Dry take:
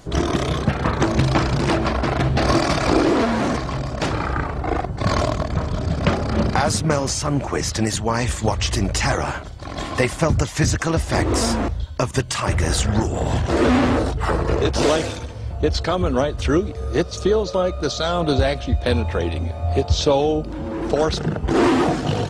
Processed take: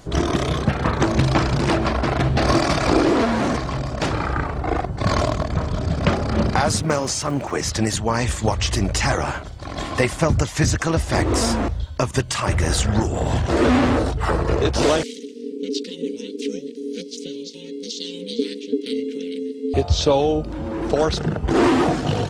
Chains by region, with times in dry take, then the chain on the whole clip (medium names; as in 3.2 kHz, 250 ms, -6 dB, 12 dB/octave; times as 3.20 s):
6.82–7.64 s: high-pass 170 Hz 6 dB/octave + crackle 61 per s -32 dBFS
15.03–19.74 s: inverse Chebyshev band-stop 260–1500 Hz + ring modulator 350 Hz
whole clip: none